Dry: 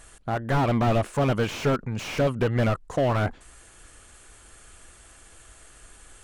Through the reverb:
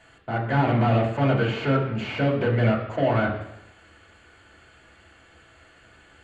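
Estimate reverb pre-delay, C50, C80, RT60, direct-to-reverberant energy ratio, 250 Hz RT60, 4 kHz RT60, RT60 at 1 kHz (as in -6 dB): 3 ms, 6.5 dB, 9.0 dB, 0.85 s, -2.5 dB, 0.85 s, 0.90 s, 0.85 s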